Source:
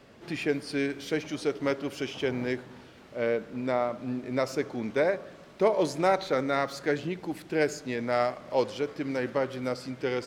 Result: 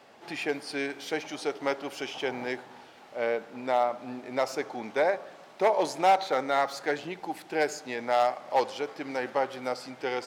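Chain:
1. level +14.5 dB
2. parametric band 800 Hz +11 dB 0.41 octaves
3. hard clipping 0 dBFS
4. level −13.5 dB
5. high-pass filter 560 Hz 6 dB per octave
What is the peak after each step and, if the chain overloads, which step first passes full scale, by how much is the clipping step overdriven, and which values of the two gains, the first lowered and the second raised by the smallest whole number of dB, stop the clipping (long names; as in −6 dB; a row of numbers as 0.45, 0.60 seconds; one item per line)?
+3.5, +7.5, 0.0, −13.5, −11.0 dBFS
step 1, 7.5 dB
step 1 +6.5 dB, step 4 −5.5 dB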